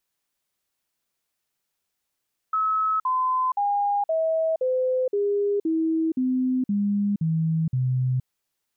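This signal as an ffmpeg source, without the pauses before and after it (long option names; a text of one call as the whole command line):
ffmpeg -f lavfi -i "aevalsrc='0.1*clip(min(mod(t,0.52),0.47-mod(t,0.52))/0.005,0,1)*sin(2*PI*1290*pow(2,-floor(t/0.52)/3)*mod(t,0.52))':duration=5.72:sample_rate=44100" out.wav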